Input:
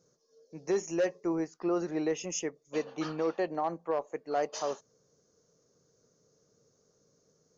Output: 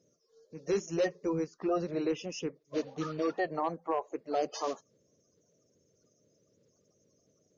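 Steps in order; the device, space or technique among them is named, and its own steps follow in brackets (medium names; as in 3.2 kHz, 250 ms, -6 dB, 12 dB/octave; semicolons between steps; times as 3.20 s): clip after many re-uploads (low-pass 6.6 kHz 24 dB/octave; coarse spectral quantiser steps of 30 dB); 1.73–2.78 s: low-pass 5.4 kHz 24 dB/octave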